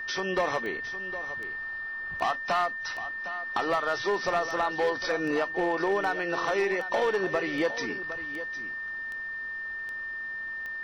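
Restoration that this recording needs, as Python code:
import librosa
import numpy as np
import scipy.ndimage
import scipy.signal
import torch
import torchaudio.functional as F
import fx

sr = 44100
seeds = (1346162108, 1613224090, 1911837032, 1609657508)

y = fx.fix_declip(x, sr, threshold_db=-19.5)
y = fx.fix_declick_ar(y, sr, threshold=10.0)
y = fx.notch(y, sr, hz=1800.0, q=30.0)
y = fx.fix_echo_inverse(y, sr, delay_ms=759, level_db=-13.0)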